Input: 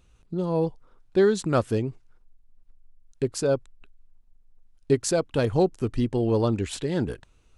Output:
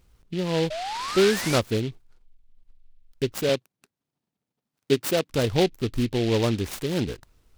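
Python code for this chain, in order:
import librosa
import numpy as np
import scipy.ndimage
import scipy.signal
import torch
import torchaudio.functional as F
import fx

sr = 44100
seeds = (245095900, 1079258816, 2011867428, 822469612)

y = fx.spec_paint(x, sr, seeds[0], shape='rise', start_s=0.7, length_s=0.89, low_hz=600.0, high_hz=2600.0, level_db=-31.0)
y = fx.highpass(y, sr, hz=140.0, slope=24, at=(3.49, 5.3))
y = fx.noise_mod_delay(y, sr, seeds[1], noise_hz=2900.0, depth_ms=0.093)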